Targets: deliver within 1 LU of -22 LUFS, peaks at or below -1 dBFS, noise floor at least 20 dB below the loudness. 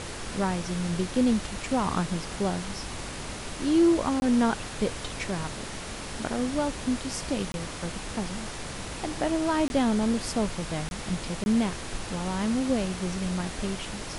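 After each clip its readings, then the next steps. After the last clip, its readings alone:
dropouts 5; longest dropout 21 ms; noise floor -37 dBFS; noise floor target -49 dBFS; loudness -28.5 LUFS; peak level -12.5 dBFS; loudness target -22.0 LUFS
-> interpolate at 4.20/7.52/9.68/10.89/11.44 s, 21 ms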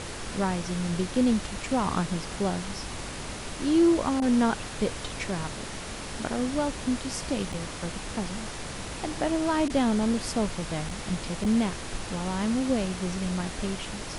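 dropouts 0; noise floor -37 dBFS; noise floor target -49 dBFS
-> noise print and reduce 12 dB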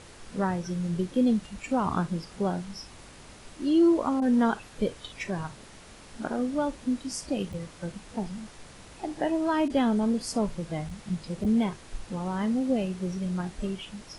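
noise floor -49 dBFS; loudness -29.0 LUFS; peak level -13.5 dBFS; loudness target -22.0 LUFS
-> trim +7 dB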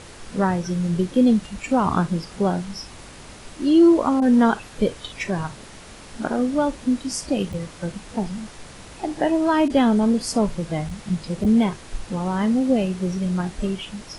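loudness -22.0 LUFS; peak level -6.5 dBFS; noise floor -42 dBFS

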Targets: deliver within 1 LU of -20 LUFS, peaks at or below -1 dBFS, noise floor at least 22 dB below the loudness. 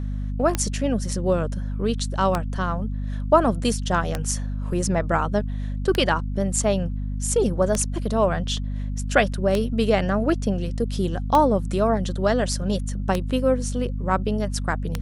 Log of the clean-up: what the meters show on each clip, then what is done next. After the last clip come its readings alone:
clicks found 9; hum 50 Hz; highest harmonic 250 Hz; hum level -25 dBFS; loudness -23.5 LUFS; peak level -4.0 dBFS; loudness target -20.0 LUFS
-> de-click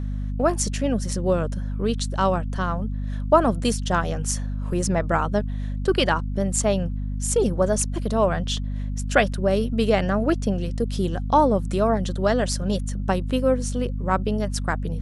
clicks found 0; hum 50 Hz; highest harmonic 250 Hz; hum level -25 dBFS
-> hum notches 50/100/150/200/250 Hz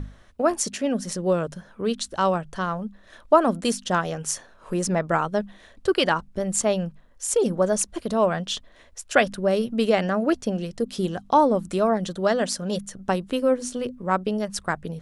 hum not found; loudness -24.5 LUFS; peak level -4.5 dBFS; loudness target -20.0 LUFS
-> trim +4.5 dB; peak limiter -1 dBFS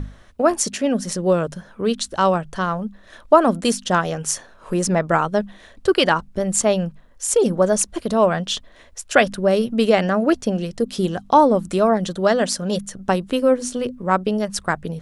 loudness -20.0 LUFS; peak level -1.0 dBFS; noise floor -48 dBFS

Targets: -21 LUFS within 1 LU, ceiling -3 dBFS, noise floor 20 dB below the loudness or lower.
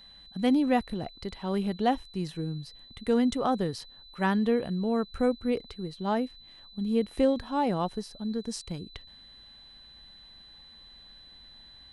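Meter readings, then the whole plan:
steady tone 4 kHz; tone level -50 dBFS; loudness -29.5 LUFS; peak level -12.5 dBFS; loudness target -21.0 LUFS
-> band-stop 4 kHz, Q 30; trim +8.5 dB

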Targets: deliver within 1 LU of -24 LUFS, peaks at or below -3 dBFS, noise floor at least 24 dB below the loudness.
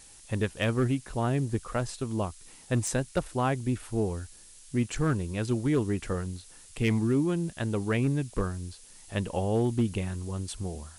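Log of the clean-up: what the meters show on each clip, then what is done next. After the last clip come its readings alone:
clipped samples 0.4%; clipping level -18.5 dBFS; noise floor -52 dBFS; noise floor target -54 dBFS; loudness -30.0 LUFS; peak level -18.5 dBFS; loudness target -24.0 LUFS
-> clip repair -18.5 dBFS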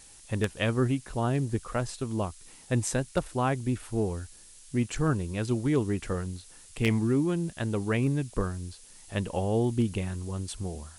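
clipped samples 0.0%; noise floor -52 dBFS; noise floor target -54 dBFS
-> noise print and reduce 6 dB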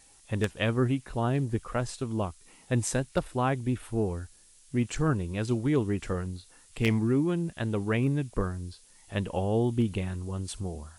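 noise floor -58 dBFS; loudness -30.0 LUFS; peak level -9.5 dBFS; loudness target -24.0 LUFS
-> trim +6 dB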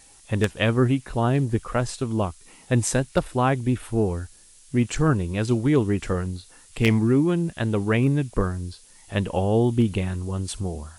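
loudness -24.0 LUFS; peak level -3.5 dBFS; noise floor -52 dBFS

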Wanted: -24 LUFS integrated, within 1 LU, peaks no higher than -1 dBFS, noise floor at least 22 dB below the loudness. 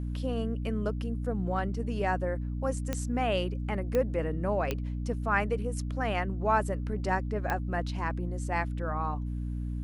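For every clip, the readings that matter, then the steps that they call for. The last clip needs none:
clicks found 4; hum 60 Hz; highest harmonic 300 Hz; hum level -31 dBFS; loudness -31.5 LUFS; peak level -13.5 dBFS; loudness target -24.0 LUFS
-> de-click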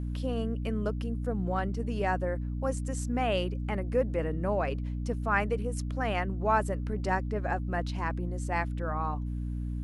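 clicks found 0; hum 60 Hz; highest harmonic 300 Hz; hum level -31 dBFS
-> hum notches 60/120/180/240/300 Hz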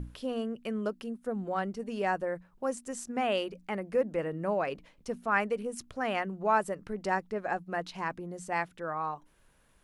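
hum not found; loudness -33.0 LUFS; peak level -14.0 dBFS; loudness target -24.0 LUFS
-> trim +9 dB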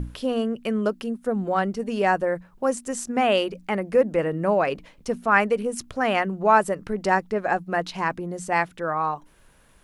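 loudness -24.0 LUFS; peak level -5.0 dBFS; noise floor -56 dBFS

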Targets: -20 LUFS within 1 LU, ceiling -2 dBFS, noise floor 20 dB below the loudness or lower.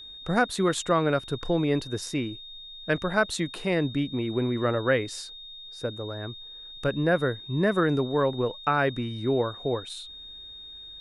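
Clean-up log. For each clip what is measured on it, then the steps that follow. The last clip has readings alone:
steady tone 3.7 kHz; tone level -41 dBFS; loudness -27.0 LUFS; peak level -9.0 dBFS; loudness target -20.0 LUFS
-> band-stop 3.7 kHz, Q 30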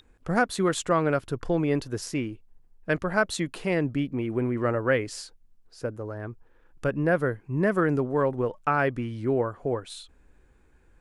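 steady tone not found; loudness -27.0 LUFS; peak level -9.5 dBFS; loudness target -20.0 LUFS
-> trim +7 dB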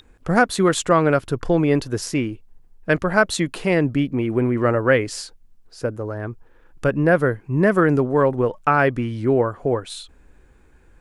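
loudness -20.0 LUFS; peak level -2.5 dBFS; noise floor -53 dBFS

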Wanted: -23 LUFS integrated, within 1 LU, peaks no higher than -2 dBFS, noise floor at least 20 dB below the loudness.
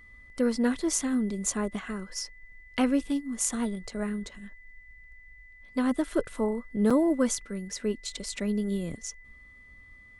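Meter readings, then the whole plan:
dropouts 1; longest dropout 5.4 ms; steady tone 2 kHz; tone level -51 dBFS; loudness -29.5 LUFS; peak level -10.0 dBFS; loudness target -23.0 LUFS
-> interpolate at 6.90 s, 5.4 ms; band-stop 2 kHz, Q 30; trim +6.5 dB

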